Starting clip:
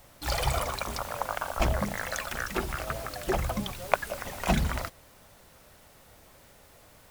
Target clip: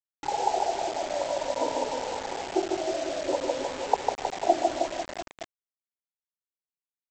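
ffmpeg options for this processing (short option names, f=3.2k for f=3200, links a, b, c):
-filter_complex "[0:a]afftfilt=real='re*pow(10,15/40*sin(2*PI*(1*log(max(b,1)*sr/1024/100)/log(2)-(-0.55)*(pts-256)/sr)))':imag='im*pow(10,15/40*sin(2*PI*(1*log(max(b,1)*sr/1024/100)/log(2)-(-0.55)*(pts-256)/sr)))':win_size=1024:overlap=0.75,afftdn=nr=34:nf=-50,asplit=2[a][b];[b]aeval=exprs='(mod(2.51*val(0)+1,2)-1)/2.51':c=same,volume=-10dB[c];[a][c]amix=inputs=2:normalize=0,aecho=1:1:150|315|496.5|696.2|915.8:0.631|0.398|0.251|0.158|0.1,afftfilt=real='re*between(b*sr/4096,250,1000)':imag='im*between(b*sr/4096,250,1000)':win_size=4096:overlap=0.75,aresample=16000,acrusher=bits=5:mix=0:aa=0.000001,aresample=44100"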